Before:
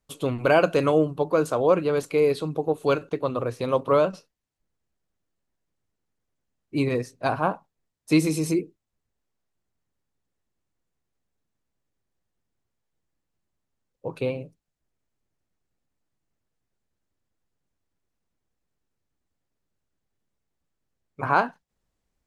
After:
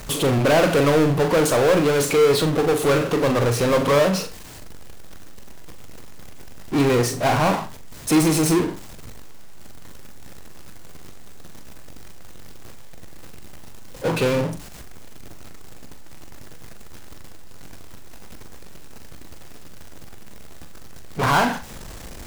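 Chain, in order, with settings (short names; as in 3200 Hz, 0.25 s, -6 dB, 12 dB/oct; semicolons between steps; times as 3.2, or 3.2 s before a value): power-law curve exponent 0.35; flutter echo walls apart 7.2 m, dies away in 0.28 s; gain -5 dB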